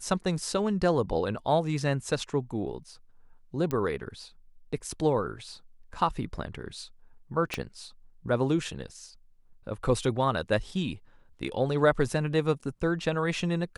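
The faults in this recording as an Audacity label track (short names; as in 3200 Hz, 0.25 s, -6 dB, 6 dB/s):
3.710000	3.710000	pop -17 dBFS
7.540000	7.540000	pop -16 dBFS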